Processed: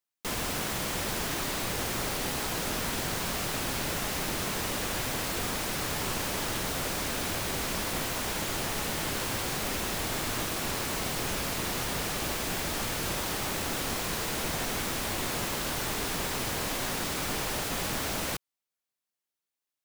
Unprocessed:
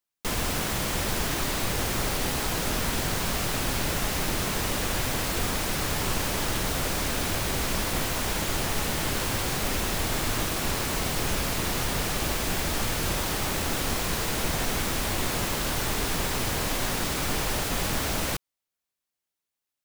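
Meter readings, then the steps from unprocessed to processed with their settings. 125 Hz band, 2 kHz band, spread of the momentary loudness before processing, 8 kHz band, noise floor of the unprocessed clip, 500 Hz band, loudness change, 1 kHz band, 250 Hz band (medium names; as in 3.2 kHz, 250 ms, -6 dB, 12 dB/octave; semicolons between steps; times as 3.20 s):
-6.5 dB, -3.0 dB, 0 LU, -3.0 dB, under -85 dBFS, -3.5 dB, -3.5 dB, -3.0 dB, -4.0 dB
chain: bass shelf 85 Hz -8.5 dB; trim -3 dB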